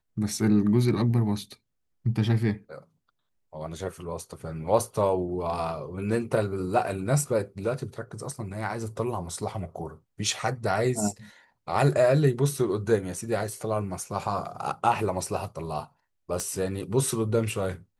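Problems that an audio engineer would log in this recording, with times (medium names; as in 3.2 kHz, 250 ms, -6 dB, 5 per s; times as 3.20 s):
16.40 s: pop -17 dBFS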